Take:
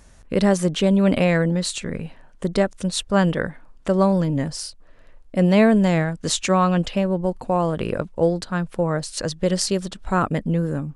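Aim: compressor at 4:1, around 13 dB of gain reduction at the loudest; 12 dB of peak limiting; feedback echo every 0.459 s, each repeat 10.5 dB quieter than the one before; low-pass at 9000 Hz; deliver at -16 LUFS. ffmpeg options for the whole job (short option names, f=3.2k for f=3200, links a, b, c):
-af "lowpass=9k,acompressor=threshold=-28dB:ratio=4,alimiter=level_in=1dB:limit=-24dB:level=0:latency=1,volume=-1dB,aecho=1:1:459|918|1377:0.299|0.0896|0.0269,volume=19dB"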